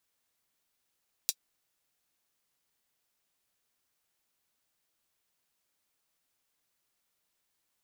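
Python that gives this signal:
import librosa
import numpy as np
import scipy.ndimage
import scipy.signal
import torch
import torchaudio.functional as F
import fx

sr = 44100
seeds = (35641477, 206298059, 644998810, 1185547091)

y = fx.drum_hat(sr, length_s=0.24, from_hz=4400.0, decay_s=0.06)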